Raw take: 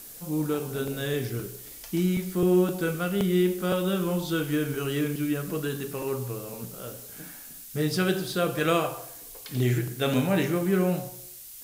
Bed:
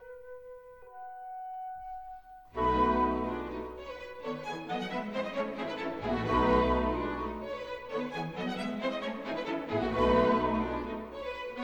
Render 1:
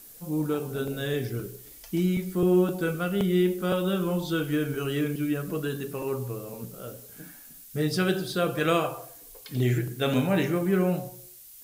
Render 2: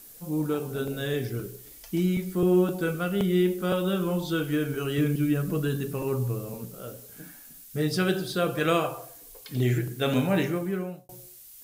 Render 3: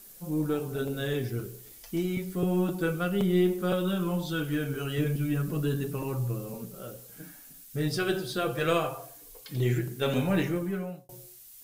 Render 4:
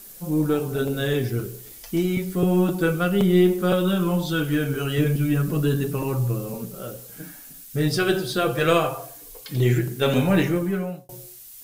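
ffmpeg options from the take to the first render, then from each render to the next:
-af "afftdn=nr=6:nf=-44"
-filter_complex "[0:a]asettb=1/sr,asplit=3[a][b][c];[a]atrim=end=4.984[d];[b]atrim=start=4.98:end=6.58,asetpts=PTS-STARTPTS,afade=t=in:d=0.004:c=qsin,afade=t=out:st=1.596:d=0.004:c=qsin,bass=f=250:g=7,treble=f=4k:g=1[e];[c]atrim=start=6.576[f];[d][e]acrossfade=d=0.004:c1=hsin:c2=qsin[g];[g][f]acrossfade=d=0.004:c1=qsin:c2=hsin,asplit=2[h][i];[h]atrim=end=11.09,asetpts=PTS-STARTPTS,afade=t=out:st=10.39:d=0.7[j];[i]atrim=start=11.09,asetpts=PTS-STARTPTS,afade=t=in:d=0.004:c=hsin[k];[j][k]concat=n=2:v=0:a=1"
-filter_complex "[0:a]flanger=delay=5:depth=3.8:regen=-33:speed=0.3:shape=triangular,asplit=2[a][b];[b]aeval=exprs='clip(val(0),-1,0.0126)':c=same,volume=-11dB[c];[a][c]amix=inputs=2:normalize=0"
-af "volume=7dB"

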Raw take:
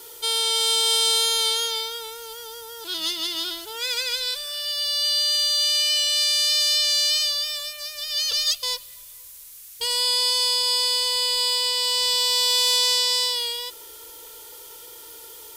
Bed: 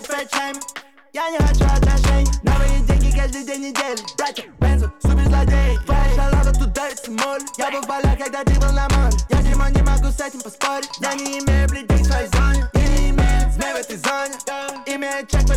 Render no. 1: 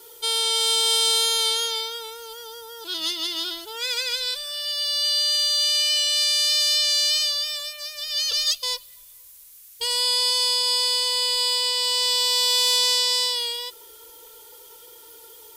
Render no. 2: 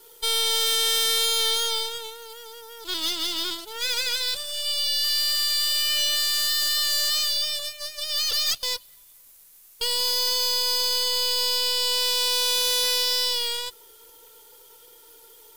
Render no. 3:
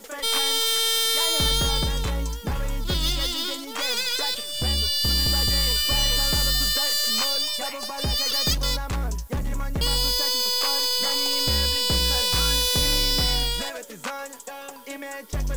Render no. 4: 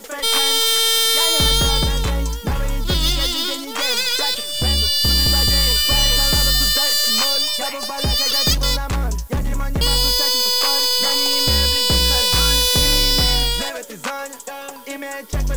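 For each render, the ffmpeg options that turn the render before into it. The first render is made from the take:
-af "afftdn=nr=6:nf=-43"
-af "aeval=exprs='0.126*(abs(mod(val(0)/0.126+3,4)-2)-1)':c=same,aeval=exprs='0.133*(cos(1*acos(clip(val(0)/0.133,-1,1)))-cos(1*PI/2))+0.00944*(cos(5*acos(clip(val(0)/0.133,-1,1)))-cos(5*PI/2))+0.0168*(cos(6*acos(clip(val(0)/0.133,-1,1)))-cos(6*PI/2))+0.015*(cos(7*acos(clip(val(0)/0.133,-1,1)))-cos(7*PI/2))':c=same"
-filter_complex "[1:a]volume=-11.5dB[a];[0:a][a]amix=inputs=2:normalize=0"
-af "volume=6dB"

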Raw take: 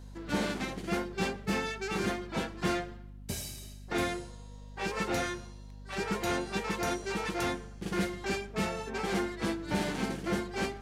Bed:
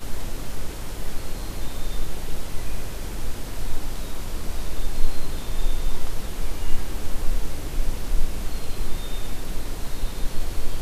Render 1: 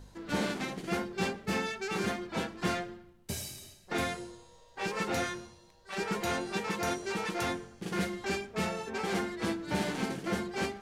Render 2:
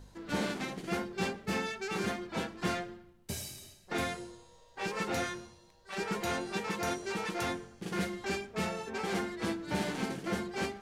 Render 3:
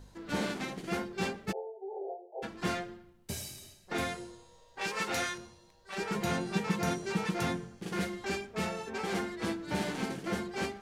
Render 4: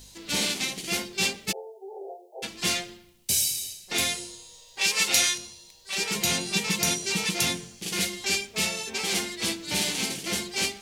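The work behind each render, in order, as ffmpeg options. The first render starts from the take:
-af "bandreject=f=50:t=h:w=4,bandreject=f=100:t=h:w=4,bandreject=f=150:t=h:w=4,bandreject=f=200:t=h:w=4,bandreject=f=250:t=h:w=4,bandreject=f=300:t=h:w=4,bandreject=f=350:t=h:w=4"
-af "volume=-1.5dB"
-filter_complex "[0:a]asplit=3[a][b][c];[a]afade=t=out:st=1.51:d=0.02[d];[b]asuperpass=centerf=570:order=20:qfactor=1.2,afade=t=in:st=1.51:d=0.02,afade=t=out:st=2.42:d=0.02[e];[c]afade=t=in:st=2.42:d=0.02[f];[d][e][f]amix=inputs=3:normalize=0,asettb=1/sr,asplit=3[g][h][i];[g]atrim=end=4.814[j];[h]atrim=start=4.81:end=5.38,asetpts=PTS-STARTPTS,afade=t=in:d=0.004:c=qsin,afade=t=out:st=0.566:d=0.004:c=qsin,tiltshelf=f=800:g=-4.5[k];[i]atrim=start=5.376[l];[j][k]acrossfade=d=0.004:c1=hsin:c2=qsin[m];[m][l]acrossfade=d=0.004:c1=qsin:c2=hsin,asettb=1/sr,asplit=3[n][o][p];[n]atrim=end=6.144[q];[o]atrim=start=6.14:end=7.78,asetpts=PTS-STARTPTS,afade=t=in:d=0.004:c=qsin,afade=t=out:st=1.636:d=0.004:c=qsin,equalizer=f=160:t=o:w=0.77:g=12.5[r];[p]atrim=start=7.776[s];[q][r]acrossfade=d=0.004:c1=hsin:c2=qsin[t];[t][s]acrossfade=d=0.004:c1=qsin:c2=hsin"
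-af "aexciter=amount=6:drive=4.9:freq=2.2k"

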